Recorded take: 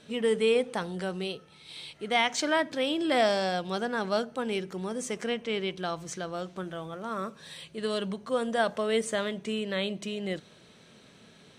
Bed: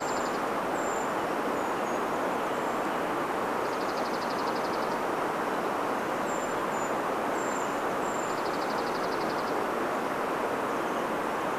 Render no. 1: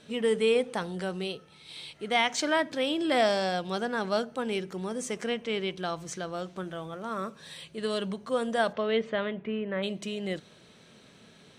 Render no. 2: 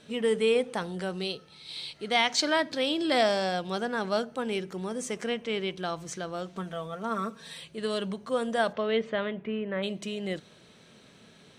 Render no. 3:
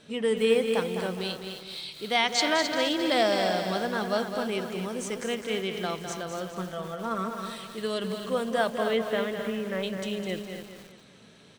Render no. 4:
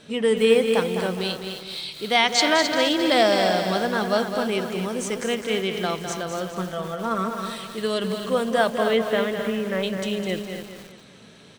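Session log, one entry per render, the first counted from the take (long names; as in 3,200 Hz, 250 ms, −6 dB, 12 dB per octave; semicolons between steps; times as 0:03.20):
0:08.72–0:09.82: low-pass filter 4,700 Hz → 1,900 Hz 24 dB per octave
0:01.17–0:03.23: parametric band 4,400 Hz +8.5 dB 0.53 octaves; 0:06.53–0:07.60: comb filter 4.4 ms
repeating echo 206 ms, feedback 42%, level −8 dB; feedback echo at a low word length 264 ms, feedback 35%, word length 7 bits, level −8 dB
level +5.5 dB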